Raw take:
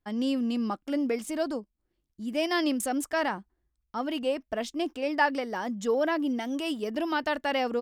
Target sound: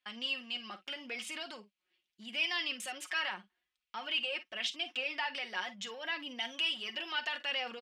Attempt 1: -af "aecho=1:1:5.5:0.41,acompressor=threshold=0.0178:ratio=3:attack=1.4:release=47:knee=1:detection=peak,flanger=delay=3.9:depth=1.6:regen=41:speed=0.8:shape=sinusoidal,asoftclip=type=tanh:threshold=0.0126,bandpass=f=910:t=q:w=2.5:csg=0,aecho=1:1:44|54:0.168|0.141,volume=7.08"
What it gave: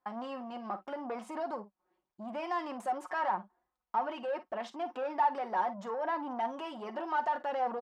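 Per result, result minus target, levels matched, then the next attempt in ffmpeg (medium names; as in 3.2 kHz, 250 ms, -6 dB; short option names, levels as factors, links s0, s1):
saturation: distortion +18 dB; 1 kHz band +12.0 dB
-af "aecho=1:1:5.5:0.41,acompressor=threshold=0.0178:ratio=3:attack=1.4:release=47:knee=1:detection=peak,flanger=delay=3.9:depth=1.6:regen=41:speed=0.8:shape=sinusoidal,asoftclip=type=tanh:threshold=0.0501,bandpass=f=910:t=q:w=2.5:csg=0,aecho=1:1:44|54:0.168|0.141,volume=7.08"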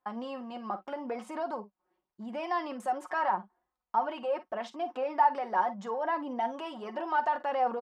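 1 kHz band +12.0 dB
-af "aecho=1:1:5.5:0.41,acompressor=threshold=0.0178:ratio=3:attack=1.4:release=47:knee=1:detection=peak,flanger=delay=3.9:depth=1.6:regen=41:speed=0.8:shape=sinusoidal,asoftclip=type=tanh:threshold=0.0501,bandpass=f=2800:t=q:w=2.5:csg=0,aecho=1:1:44|54:0.168|0.141,volume=7.08"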